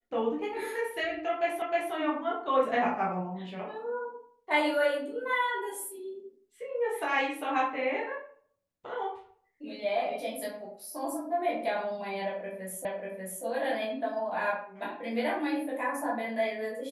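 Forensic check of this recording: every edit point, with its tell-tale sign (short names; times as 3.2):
1.62 repeat of the last 0.31 s
12.85 repeat of the last 0.59 s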